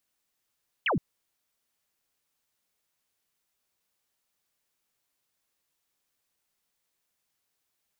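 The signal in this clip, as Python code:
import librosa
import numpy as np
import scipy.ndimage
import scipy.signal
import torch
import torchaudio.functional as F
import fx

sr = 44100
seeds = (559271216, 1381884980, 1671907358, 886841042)

y = fx.laser_zap(sr, level_db=-23.0, start_hz=3300.0, end_hz=120.0, length_s=0.12, wave='sine')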